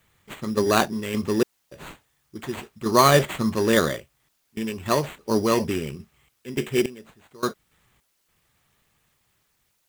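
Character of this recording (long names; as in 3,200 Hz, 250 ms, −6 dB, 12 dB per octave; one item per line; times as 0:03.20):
aliases and images of a low sample rate 5,300 Hz, jitter 0%
sample-and-hold tremolo, depth 100%
a quantiser's noise floor 12 bits, dither triangular
Nellymoser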